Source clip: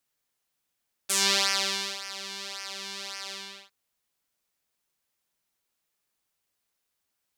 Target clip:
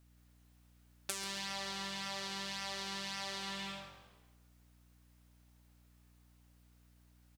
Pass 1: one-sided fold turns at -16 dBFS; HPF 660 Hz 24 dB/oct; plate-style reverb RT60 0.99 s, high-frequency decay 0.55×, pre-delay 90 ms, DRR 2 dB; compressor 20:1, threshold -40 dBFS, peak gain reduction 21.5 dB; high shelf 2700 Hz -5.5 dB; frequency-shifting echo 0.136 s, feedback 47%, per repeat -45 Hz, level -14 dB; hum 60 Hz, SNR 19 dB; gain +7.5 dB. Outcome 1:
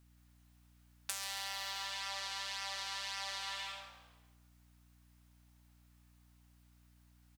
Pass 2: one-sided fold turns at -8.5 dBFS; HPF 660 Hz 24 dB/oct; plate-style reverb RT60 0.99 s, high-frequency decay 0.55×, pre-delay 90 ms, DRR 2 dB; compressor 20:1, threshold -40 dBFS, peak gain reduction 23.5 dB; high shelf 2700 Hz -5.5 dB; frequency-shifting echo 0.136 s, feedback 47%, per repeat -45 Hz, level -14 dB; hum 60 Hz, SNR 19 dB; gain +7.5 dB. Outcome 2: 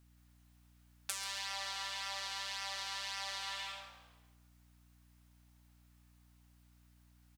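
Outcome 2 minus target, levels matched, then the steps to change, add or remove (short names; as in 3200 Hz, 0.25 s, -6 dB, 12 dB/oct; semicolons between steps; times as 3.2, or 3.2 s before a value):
500 Hz band -7.0 dB
remove: HPF 660 Hz 24 dB/oct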